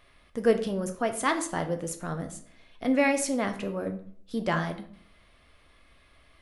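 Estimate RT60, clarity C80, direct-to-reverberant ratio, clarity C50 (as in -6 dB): 0.55 s, 15.0 dB, 5.5 dB, 11.5 dB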